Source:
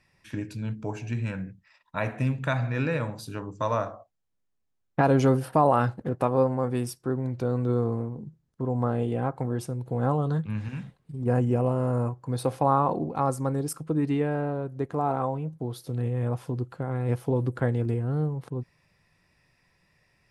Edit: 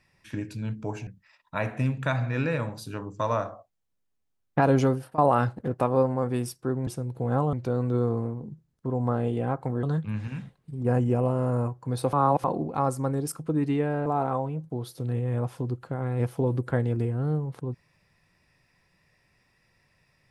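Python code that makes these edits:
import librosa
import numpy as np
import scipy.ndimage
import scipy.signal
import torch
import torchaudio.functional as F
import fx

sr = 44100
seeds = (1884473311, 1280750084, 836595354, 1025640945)

y = fx.edit(x, sr, fx.cut(start_s=1.07, length_s=0.41),
    fx.fade_out_to(start_s=5.19, length_s=0.4, floor_db=-20.0),
    fx.move(start_s=9.58, length_s=0.66, to_s=7.28),
    fx.reverse_span(start_s=12.54, length_s=0.31),
    fx.cut(start_s=14.47, length_s=0.48), tone=tone)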